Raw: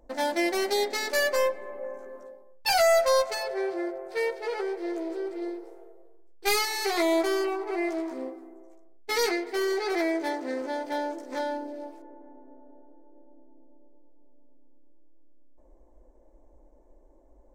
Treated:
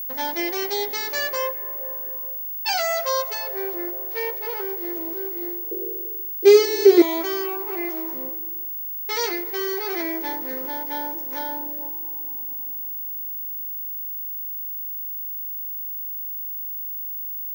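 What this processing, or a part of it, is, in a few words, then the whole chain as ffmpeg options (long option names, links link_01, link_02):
old television with a line whistle: -filter_complex "[0:a]asettb=1/sr,asplit=3[link_01][link_02][link_03];[link_01]atrim=end=5.714[link_04];[link_02]atrim=start=5.71:end=7.02,asetpts=PTS-STARTPTS,afade=type=in:duration=0.004:curve=qsin,afade=type=out:start_time=1.306:duration=0.004:curve=qsin,lowshelf=frequency=610:width_type=q:width=3:gain=13[link_05];[link_03]atrim=start=7.016[link_06];[link_04][link_05]acrossfade=duration=0.004:curve1=hsin:curve2=qsin[link_07];[link_07][link_06]acrossfade=duration=0.004:curve1=qsin:curve2=hsin,highpass=frequency=180:width=0.5412,highpass=frequency=180:width=1.3066,equalizer=frequency=220:width_type=q:width=4:gain=-7,equalizer=frequency=620:width_type=q:width=4:gain=-8,equalizer=frequency=950:width_type=q:width=4:gain=4,equalizer=frequency=3100:width_type=q:width=4:gain=4,equalizer=frequency=5800:width_type=q:width=4:gain=5,lowpass=frequency=7300:width=0.5412,lowpass=frequency=7300:width=1.3066,aeval=exprs='val(0)+0.0398*sin(2*PI*15625*n/s)':channel_layout=same"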